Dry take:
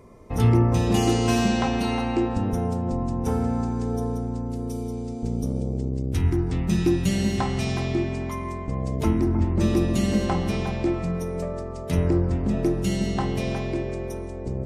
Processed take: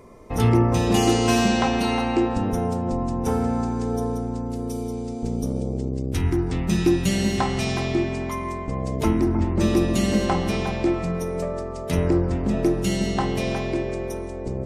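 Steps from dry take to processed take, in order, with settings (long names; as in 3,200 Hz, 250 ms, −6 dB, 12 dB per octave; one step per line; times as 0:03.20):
parametric band 89 Hz −5.5 dB 2.6 octaves
level +4 dB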